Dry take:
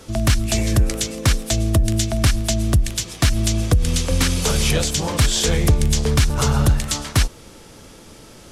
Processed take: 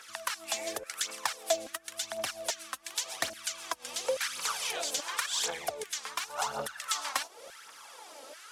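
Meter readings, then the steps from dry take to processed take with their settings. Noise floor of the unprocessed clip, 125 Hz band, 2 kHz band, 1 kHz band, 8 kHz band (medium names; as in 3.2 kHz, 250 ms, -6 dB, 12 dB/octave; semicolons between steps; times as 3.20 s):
-43 dBFS, under -40 dB, -9.0 dB, -6.5 dB, -11.0 dB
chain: compression 4:1, threshold -23 dBFS, peak gain reduction 11 dB; LFO high-pass saw down 1.2 Hz 550–1600 Hz; phaser 0.91 Hz, delay 3.9 ms, feedback 59%; trim -6.5 dB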